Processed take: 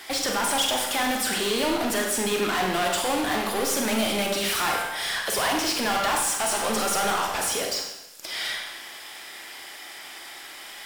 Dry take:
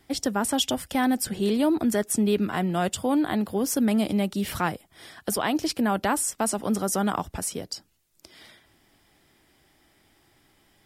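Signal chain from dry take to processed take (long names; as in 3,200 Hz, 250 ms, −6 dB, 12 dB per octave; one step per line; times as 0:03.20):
parametric band 140 Hz −14.5 dB 3 octaves
hum removal 98.33 Hz, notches 17
mid-hump overdrive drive 30 dB, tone 7,700 Hz, clips at −21 dBFS
four-comb reverb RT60 0.89 s, combs from 32 ms, DRR 1.5 dB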